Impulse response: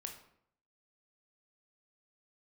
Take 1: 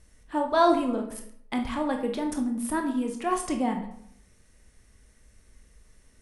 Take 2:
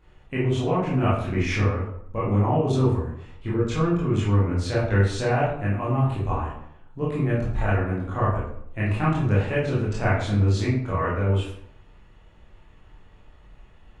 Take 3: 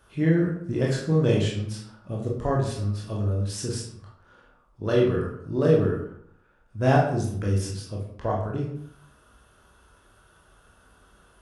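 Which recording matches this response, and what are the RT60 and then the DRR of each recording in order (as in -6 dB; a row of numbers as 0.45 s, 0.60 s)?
1; 0.65 s, 0.70 s, 0.70 s; 3.0 dB, -8.5 dB, -3.0 dB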